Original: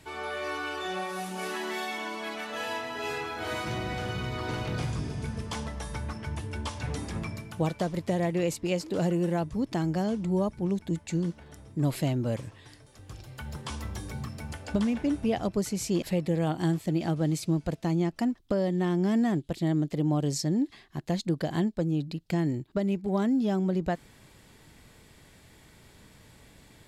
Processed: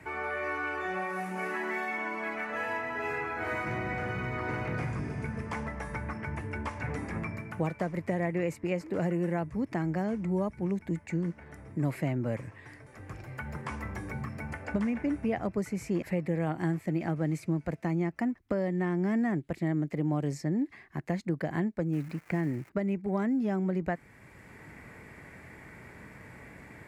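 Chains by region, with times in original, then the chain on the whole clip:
0:21.92–0:22.68: one scale factor per block 5 bits + high-shelf EQ 11,000 Hz −11.5 dB + surface crackle 600 per second −40 dBFS
whole clip: high-pass filter 53 Hz; high shelf with overshoot 2,700 Hz −8 dB, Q 3; multiband upward and downward compressor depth 40%; level −3 dB

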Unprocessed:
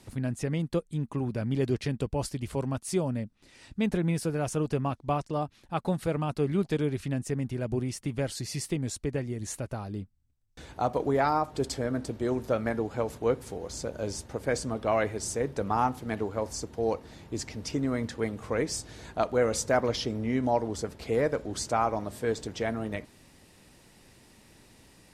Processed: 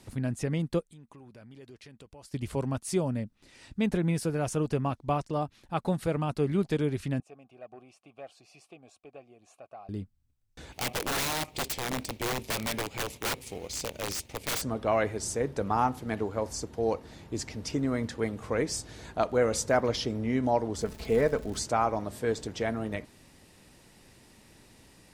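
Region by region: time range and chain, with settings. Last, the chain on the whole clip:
0:00.81–0:02.34: low-shelf EQ 370 Hz −9.5 dB + downward compressor 3 to 1, threshold −52 dBFS
0:07.20–0:09.89: formant filter a + high-shelf EQ 7,400 Hz +9.5 dB + saturating transformer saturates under 530 Hz
0:10.72–0:14.62: mu-law and A-law mismatch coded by A + high shelf with overshoot 1,900 Hz +6.5 dB, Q 3 + wrap-around overflow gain 25 dB
0:20.80–0:21.59: low-shelf EQ 78 Hz +10 dB + surface crackle 190 per second −37 dBFS + comb filter 4.6 ms, depth 38%
whole clip: no processing

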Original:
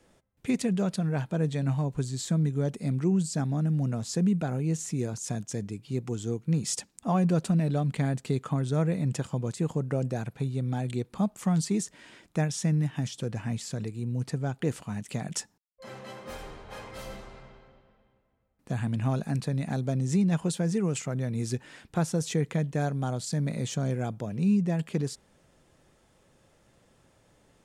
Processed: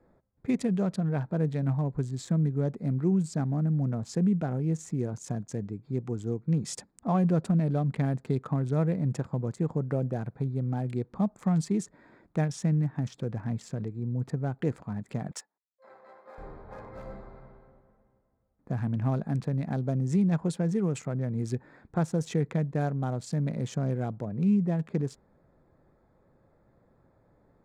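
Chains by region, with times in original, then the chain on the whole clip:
0:15.31–0:16.38: mu-law and A-law mismatch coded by A + high-pass filter 570 Hz
whole clip: adaptive Wiener filter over 15 samples; high-shelf EQ 3,900 Hz −8.5 dB; notch filter 2,900 Hz, Q 21

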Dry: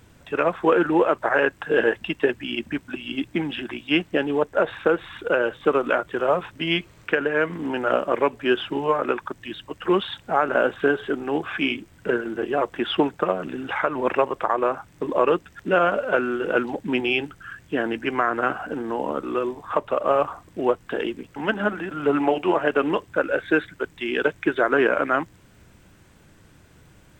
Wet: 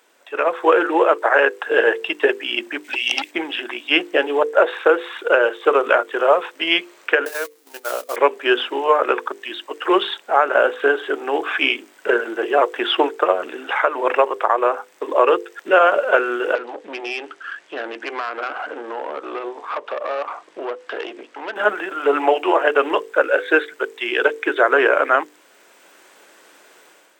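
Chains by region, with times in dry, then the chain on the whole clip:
0:02.84–0:03.31: high shelf with overshoot 1,700 Hz +6.5 dB, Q 3 + saturating transformer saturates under 2,400 Hz
0:07.25–0:08.16: spike at every zero crossing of −17 dBFS + noise gate −23 dBFS, range −31 dB + downward compressor 2 to 1, threshold −34 dBFS
0:16.55–0:21.56: downward compressor 2 to 1, threshold −31 dBFS + tube saturation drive 27 dB, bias 0.5 + low-pass filter 5,700 Hz
whole clip: high-pass filter 390 Hz 24 dB per octave; mains-hum notches 50/100/150/200/250/300/350/400/450/500 Hz; automatic gain control gain up to 9.5 dB

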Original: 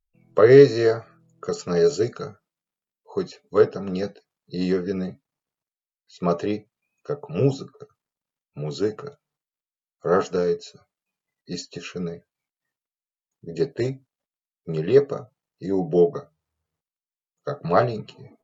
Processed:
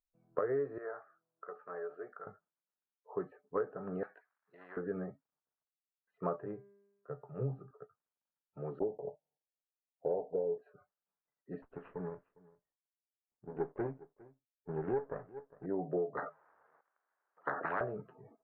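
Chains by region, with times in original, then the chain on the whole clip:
0:00.78–0:02.27: high-pass filter 1,100 Hz + spectral tilt −4.5 dB per octave + downward compressor 1.5 to 1, threshold −34 dBFS
0:04.03–0:04.77: resonant band-pass 3,500 Hz, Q 0.81 + spectral tilt +3 dB per octave + every bin compressed towards the loudest bin 2 to 1
0:06.36–0:07.71: parametric band 130 Hz +15 dB 0.39 octaves + tuned comb filter 200 Hz, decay 1.1 s
0:08.79–0:10.58: one scale factor per block 3 bits + Butterworth low-pass 910 Hz 96 dB per octave + parametric band 550 Hz +6.5 dB 0.98 octaves
0:11.62–0:15.66: lower of the sound and its delayed copy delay 0.35 ms + single-tap delay 406 ms −22.5 dB
0:16.17–0:17.81: high-pass filter 520 Hz + every bin compressed towards the loudest bin 10 to 1
whole clip: elliptic low-pass filter 1,600 Hz, stop band 80 dB; low-shelf EQ 350 Hz −11 dB; downward compressor 12 to 1, threshold −26 dBFS; level −4.5 dB

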